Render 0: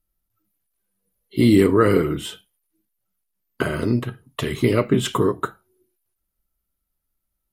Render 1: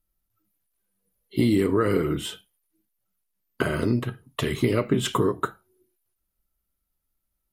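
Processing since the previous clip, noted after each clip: compressor, threshold -16 dBFS, peak gain reduction 6.5 dB; gain -1 dB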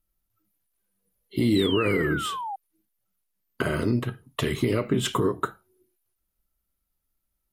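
limiter -13 dBFS, peak gain reduction 4.5 dB; painted sound fall, 1.55–2.56, 760–4100 Hz -32 dBFS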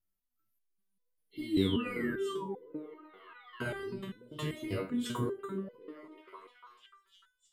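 delay with a stepping band-pass 0.298 s, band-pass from 210 Hz, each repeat 0.7 oct, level -1.5 dB; stepped resonator 5.1 Hz 95–500 Hz

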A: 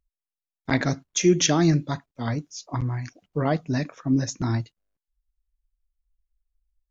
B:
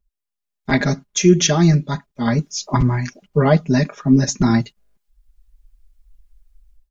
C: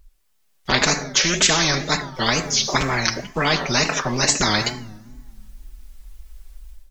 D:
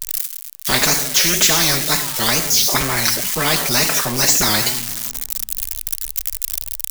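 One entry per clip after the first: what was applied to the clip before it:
low shelf 190 Hz +5 dB; comb 4.9 ms, depth 95%; AGC gain up to 15 dB; gain -1 dB
two-slope reverb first 0.55 s, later 2 s, from -28 dB, DRR 15 dB; wow and flutter 140 cents; spectral compressor 4:1
switching spikes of -10.5 dBFS

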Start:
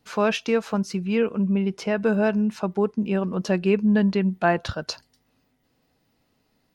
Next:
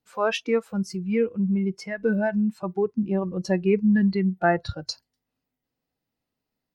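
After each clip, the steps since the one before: spectral noise reduction 16 dB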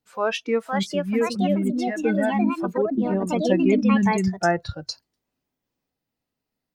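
echoes that change speed 0.55 s, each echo +4 st, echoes 2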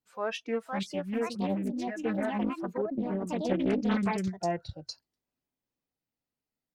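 spectral repair 4.44–4.79, 890–1800 Hz; Doppler distortion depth 0.47 ms; gain -9 dB

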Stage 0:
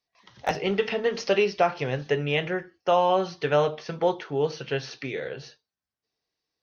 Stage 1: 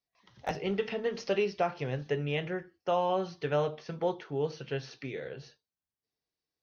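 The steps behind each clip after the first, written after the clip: low shelf 360 Hz +6 dB; gain -9 dB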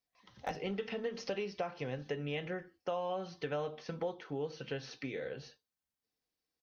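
comb 3.9 ms, depth 31%; compressor 3:1, threshold -36 dBFS, peak gain reduction 10 dB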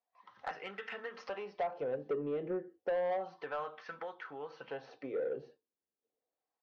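wah 0.31 Hz 370–1500 Hz, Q 2.4; soft clip -37.5 dBFS, distortion -13 dB; gain +9 dB

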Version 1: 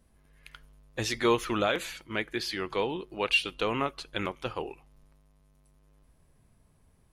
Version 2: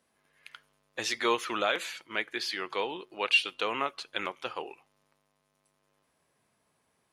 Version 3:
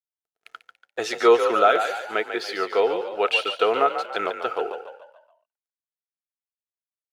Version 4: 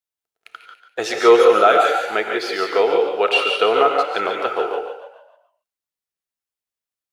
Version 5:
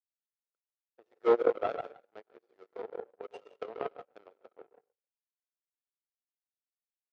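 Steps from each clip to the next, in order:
weighting filter A
crossover distortion -58 dBFS; small resonant body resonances 450/680/1300 Hz, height 17 dB, ringing for 30 ms; on a send: frequency-shifting echo 0.143 s, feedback 44%, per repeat +43 Hz, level -8.5 dB
non-linear reverb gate 0.2 s rising, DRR 3.5 dB; gain +3.5 dB
bin magnitudes rounded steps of 15 dB; power-law curve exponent 3; band-pass 480 Hz, Q 1.3; gain -4 dB

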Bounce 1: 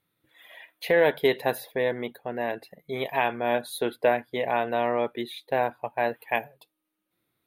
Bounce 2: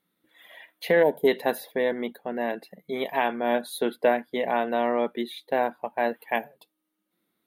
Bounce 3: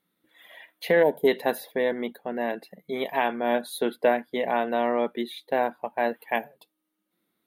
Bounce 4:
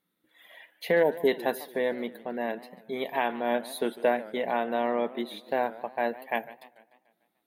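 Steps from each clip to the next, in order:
notch 2500 Hz, Q 14; spectral gain 1.03–1.27, 1000–5900 Hz -19 dB; resonant low shelf 150 Hz -8 dB, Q 3
nothing audible
warbling echo 0.147 s, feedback 53%, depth 207 cents, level -18 dB; gain -3 dB

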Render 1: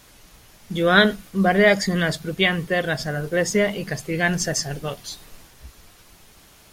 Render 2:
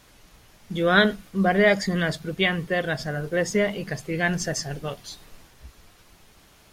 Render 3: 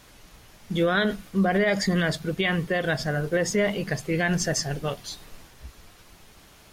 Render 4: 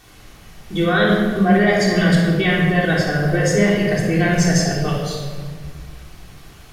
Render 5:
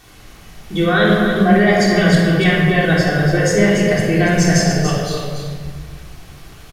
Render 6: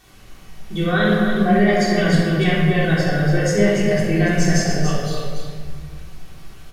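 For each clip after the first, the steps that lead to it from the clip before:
high shelf 5600 Hz -5.5 dB; gain -2.5 dB
limiter -17 dBFS, peak gain reduction 10 dB; gain +2.5 dB
shoebox room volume 2100 m³, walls mixed, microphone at 3.5 m; gain +1 dB
echo 0.287 s -7.5 dB; gain +2 dB
shoebox room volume 270 m³, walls furnished, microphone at 1.1 m; gain -6 dB

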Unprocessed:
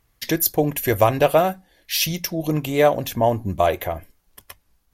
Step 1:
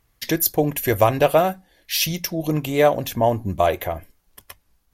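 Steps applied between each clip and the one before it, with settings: nothing audible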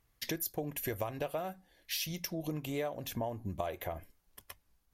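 compressor 6:1, threshold -25 dBFS, peak gain reduction 14 dB; gain -8.5 dB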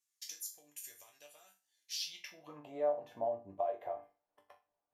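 band-pass sweep 7100 Hz -> 710 Hz, 1.86–2.66; resonator bank G2 minor, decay 0.3 s; gain +14.5 dB

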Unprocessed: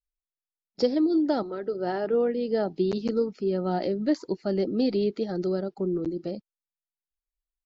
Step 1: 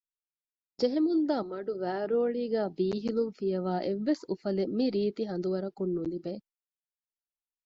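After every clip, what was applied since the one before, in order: gate with hold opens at -42 dBFS; gain -3.5 dB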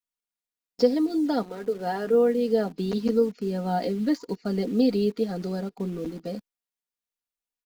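comb 4.2 ms, depth 74%; in parallel at -9 dB: bit-crush 7-bit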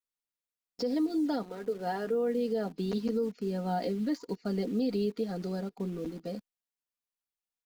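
limiter -18 dBFS, peak gain reduction 10 dB; gain -4.5 dB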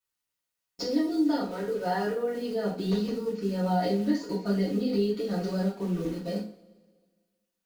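compressor, threshold -30 dBFS, peak gain reduction 5.5 dB; two-slope reverb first 0.36 s, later 1.6 s, from -21 dB, DRR -7.5 dB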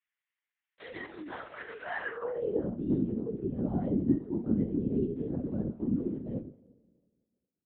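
LPC vocoder at 8 kHz whisper; band-pass sweep 2000 Hz -> 230 Hz, 2.05–2.68; gain +5 dB

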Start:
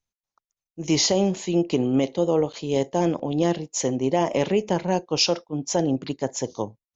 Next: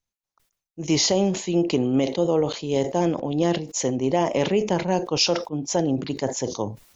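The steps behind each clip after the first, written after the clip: sustainer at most 110 dB/s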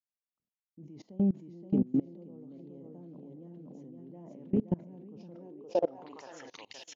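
feedback echo 0.522 s, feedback 36%, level -3.5 dB; band-pass sweep 210 Hz -> 3100 Hz, 5.29–6.75; level quantiser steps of 24 dB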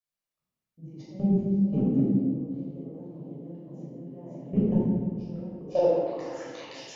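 reverb RT60 1.4 s, pre-delay 12 ms, DRR -7.5 dB; gain -4.5 dB

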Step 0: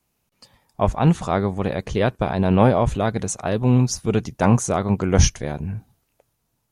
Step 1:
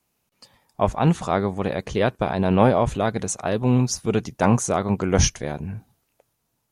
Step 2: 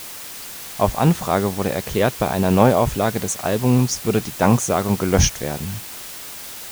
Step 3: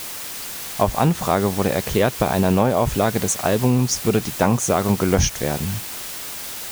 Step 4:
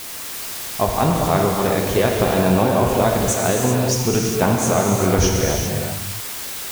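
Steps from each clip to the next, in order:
low shelf 120 Hz -7 dB
added noise white -37 dBFS; gain +2.5 dB
compressor 6:1, threshold -16 dBFS, peak gain reduction 8 dB; gain +3 dB
non-linear reverb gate 0.43 s flat, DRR -1 dB; gain -1.5 dB

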